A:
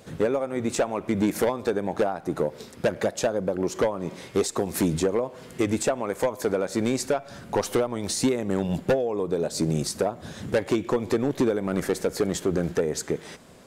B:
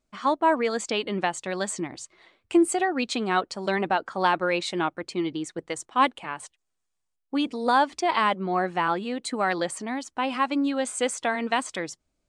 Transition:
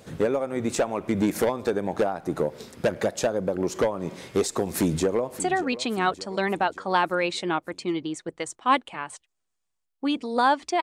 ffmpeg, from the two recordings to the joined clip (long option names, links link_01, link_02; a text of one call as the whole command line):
ffmpeg -i cue0.wav -i cue1.wav -filter_complex "[0:a]apad=whole_dur=10.82,atrim=end=10.82,atrim=end=5.402[link_01];[1:a]atrim=start=2.698:end=8.12[link_02];[link_01][link_02]acrossfade=duration=0.004:curve1=hsin:curve2=hsin,asplit=2[link_03][link_04];[link_04]afade=type=in:start_time=4.72:duration=0.01,afade=type=out:start_time=5.4:duration=0.01,aecho=0:1:580|1160|1740|2320|2900:0.188365|0.103601|0.0569804|0.0313392|0.0172366[link_05];[link_03][link_05]amix=inputs=2:normalize=0" out.wav